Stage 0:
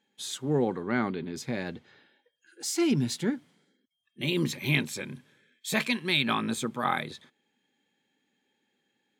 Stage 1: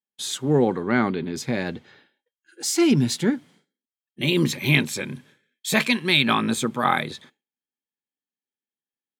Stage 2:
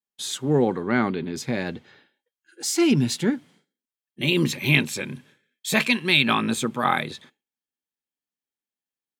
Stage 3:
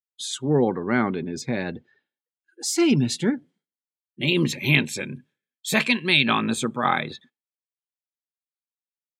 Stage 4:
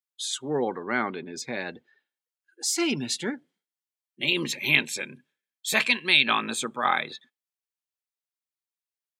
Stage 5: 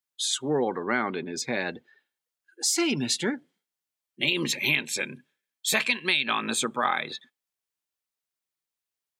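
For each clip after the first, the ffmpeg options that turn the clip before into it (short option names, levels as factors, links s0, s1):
-af "agate=range=0.0224:threshold=0.00178:ratio=3:detection=peak,volume=2.24"
-af "adynamicequalizer=threshold=0.00891:dfrequency=2700:dqfactor=7.9:tfrequency=2700:tqfactor=7.9:attack=5:release=100:ratio=0.375:range=3:mode=boostabove:tftype=bell,volume=0.891"
-af "afftdn=nr=20:nf=-42"
-af "highpass=f=710:p=1"
-af "acompressor=threshold=0.0562:ratio=5,volume=1.58"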